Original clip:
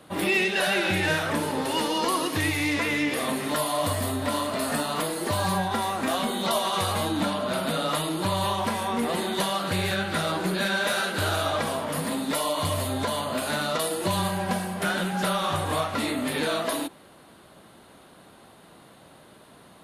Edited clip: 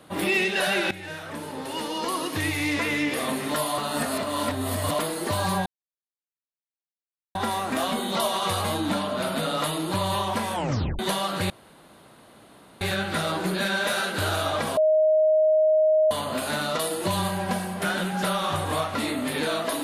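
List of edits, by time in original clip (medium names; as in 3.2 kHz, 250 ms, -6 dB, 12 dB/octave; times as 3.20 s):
0.91–2.75 s: fade in, from -16 dB
3.78–4.99 s: reverse
5.66 s: insert silence 1.69 s
8.84 s: tape stop 0.46 s
9.81 s: insert room tone 1.31 s
11.77–13.11 s: bleep 624 Hz -16 dBFS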